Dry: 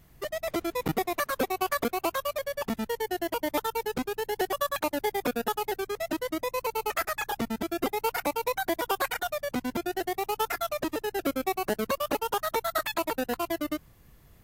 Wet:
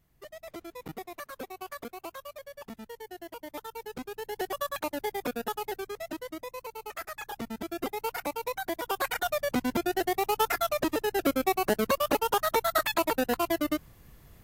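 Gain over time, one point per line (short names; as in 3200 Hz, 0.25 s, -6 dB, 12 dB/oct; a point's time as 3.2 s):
3.48 s -12.5 dB
4.51 s -4 dB
5.74 s -4 dB
6.77 s -11 dB
7.7 s -4.5 dB
8.81 s -4.5 dB
9.32 s +2.5 dB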